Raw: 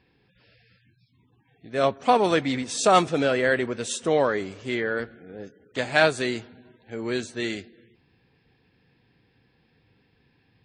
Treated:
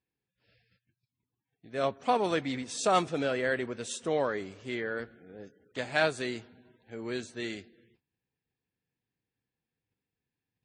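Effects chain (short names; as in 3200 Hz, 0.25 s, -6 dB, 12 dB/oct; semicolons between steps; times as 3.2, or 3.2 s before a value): gate -59 dBFS, range -18 dB; gain -7.5 dB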